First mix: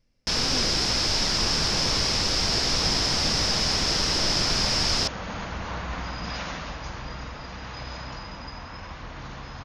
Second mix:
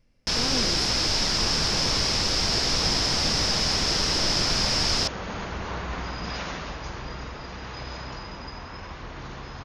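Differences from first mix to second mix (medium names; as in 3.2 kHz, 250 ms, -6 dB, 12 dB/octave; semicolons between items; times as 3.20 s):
speech +5.0 dB; second sound: add peaking EQ 390 Hz +8.5 dB 0.32 oct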